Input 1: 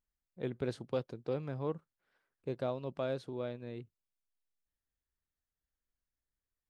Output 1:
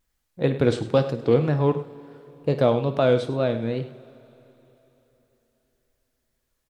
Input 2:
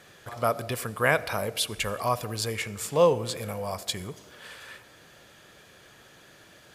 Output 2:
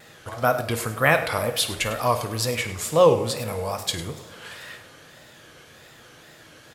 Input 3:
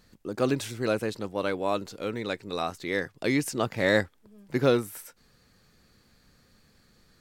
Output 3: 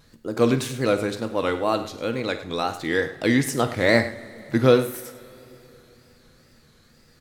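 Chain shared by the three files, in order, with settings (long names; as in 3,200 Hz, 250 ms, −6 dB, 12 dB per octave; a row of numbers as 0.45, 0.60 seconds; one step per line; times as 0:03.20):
tape wow and flutter 150 cents
multi-tap delay 53/102 ms −15/−14.5 dB
coupled-rooms reverb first 0.31 s, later 3.6 s, from −18 dB, DRR 9.5 dB
loudness normalisation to −23 LKFS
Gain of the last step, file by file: +15.5, +4.0, +4.5 decibels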